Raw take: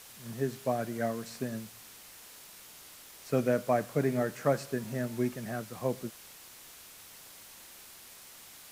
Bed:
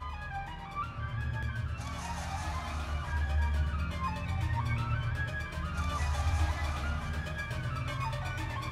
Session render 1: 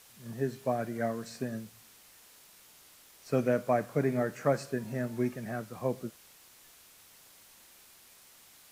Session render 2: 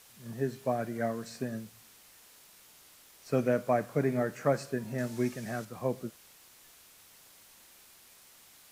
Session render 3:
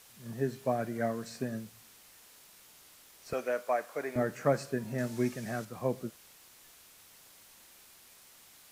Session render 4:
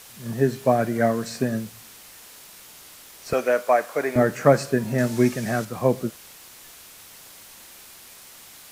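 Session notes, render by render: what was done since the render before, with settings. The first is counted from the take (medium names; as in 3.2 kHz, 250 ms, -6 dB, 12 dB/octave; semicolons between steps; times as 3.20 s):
noise print and reduce 6 dB
4.98–5.65 s: peaking EQ 6 kHz +8 dB 2 oct
3.33–4.16 s: high-pass 590 Hz
trim +11.5 dB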